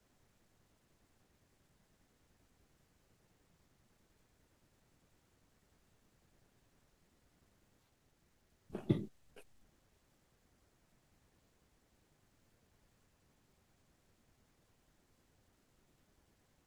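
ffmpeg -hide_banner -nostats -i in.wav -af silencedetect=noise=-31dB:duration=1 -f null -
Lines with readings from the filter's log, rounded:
silence_start: 0.00
silence_end: 8.75 | silence_duration: 8.75
silence_start: 8.97
silence_end: 16.66 | silence_duration: 7.70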